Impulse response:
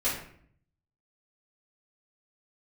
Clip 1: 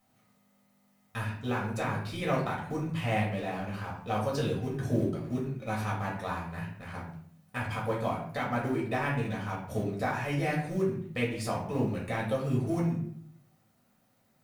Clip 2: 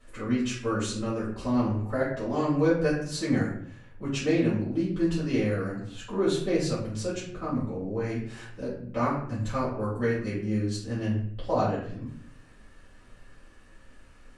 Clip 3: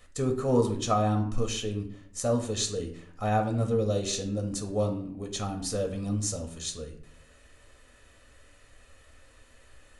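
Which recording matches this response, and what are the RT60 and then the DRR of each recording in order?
2; 0.60, 0.60, 0.60 s; -4.5, -11.0, 4.0 dB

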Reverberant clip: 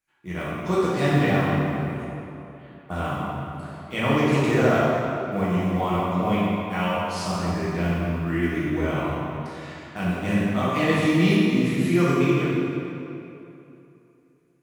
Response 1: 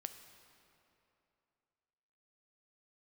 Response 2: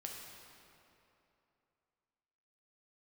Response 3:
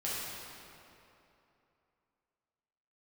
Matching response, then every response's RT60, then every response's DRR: 3; 2.9, 2.9, 2.9 s; 8.0, -1.0, -8.5 dB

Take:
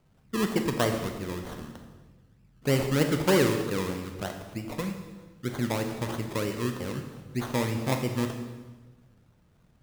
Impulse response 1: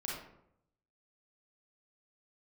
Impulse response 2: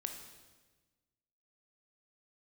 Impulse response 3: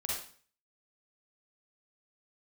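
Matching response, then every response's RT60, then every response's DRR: 2; 0.75, 1.3, 0.45 s; -4.5, 4.5, -5.0 dB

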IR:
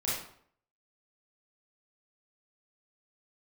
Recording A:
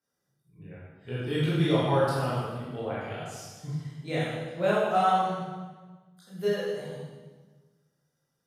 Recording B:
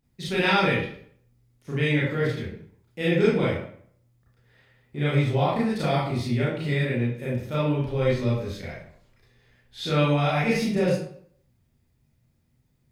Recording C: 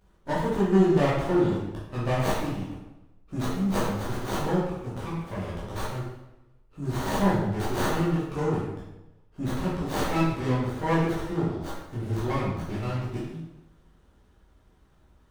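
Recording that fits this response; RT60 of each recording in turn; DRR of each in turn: B; 1.4, 0.60, 0.95 s; -9.0, -8.0, -9.0 dB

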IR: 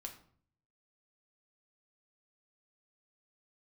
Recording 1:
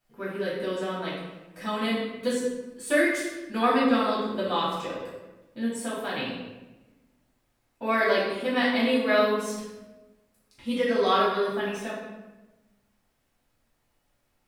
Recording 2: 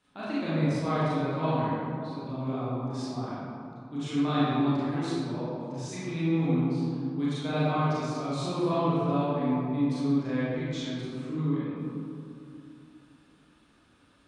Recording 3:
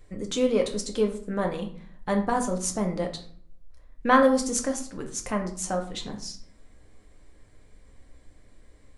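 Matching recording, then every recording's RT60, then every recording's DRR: 3; 1.1, 2.6, 0.55 s; -9.0, -11.0, 2.5 dB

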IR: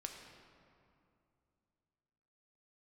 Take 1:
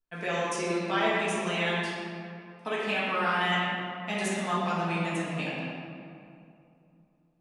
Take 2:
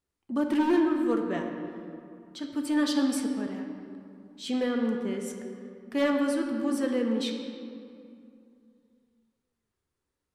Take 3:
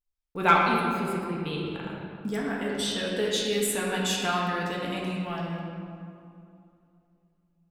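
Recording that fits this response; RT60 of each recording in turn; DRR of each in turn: 2; 2.5, 2.6, 2.5 s; -9.0, 2.0, -4.0 dB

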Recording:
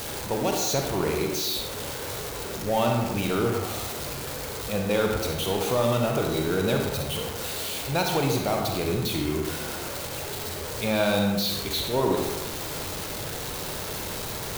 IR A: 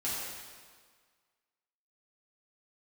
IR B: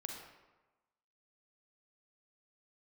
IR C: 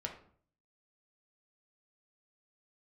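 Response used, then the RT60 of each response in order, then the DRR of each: B; 1.7, 1.2, 0.55 s; -9.5, 1.0, 0.5 dB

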